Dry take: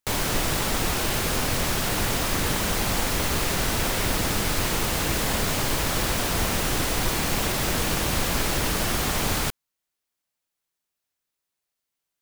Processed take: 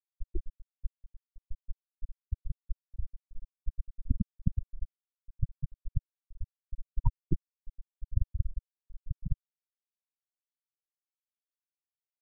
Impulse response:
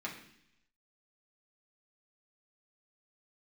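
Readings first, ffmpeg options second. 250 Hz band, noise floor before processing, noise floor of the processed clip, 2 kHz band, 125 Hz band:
-15.5 dB, -84 dBFS, under -85 dBFS, under -40 dB, -8.0 dB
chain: -af "aeval=exprs='0.335*(cos(1*acos(clip(val(0)/0.335,-1,1)))-cos(1*PI/2))+0.0299*(cos(2*acos(clip(val(0)/0.335,-1,1)))-cos(2*PI/2))+0.0133*(cos(6*acos(clip(val(0)/0.335,-1,1)))-cos(6*PI/2))+0.0841*(cos(7*acos(clip(val(0)/0.335,-1,1)))-cos(7*PI/2))':c=same,afftfilt=real='re*gte(hypot(re,im),0.316)':imag='im*gte(hypot(re,im),0.316)':win_size=1024:overlap=0.75,volume=7dB"

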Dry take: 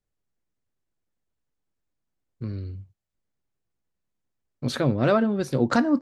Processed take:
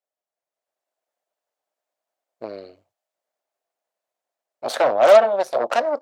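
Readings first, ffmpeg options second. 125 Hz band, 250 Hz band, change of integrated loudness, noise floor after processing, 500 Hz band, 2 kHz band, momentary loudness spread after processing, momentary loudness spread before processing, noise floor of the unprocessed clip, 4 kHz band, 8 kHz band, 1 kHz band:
under -20 dB, -14.5 dB, +7.0 dB, under -85 dBFS, +10.0 dB, +4.0 dB, 22 LU, 16 LU, -81 dBFS, +4.5 dB, +4.5 dB, +9.5 dB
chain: -af "dynaudnorm=f=110:g=11:m=7.5dB,aeval=exprs='0.668*(cos(1*acos(clip(val(0)/0.668,-1,1)))-cos(1*PI/2))+0.133*(cos(8*acos(clip(val(0)/0.668,-1,1)))-cos(8*PI/2))':c=same,highpass=f=640:t=q:w=4.8,volume=-5dB"

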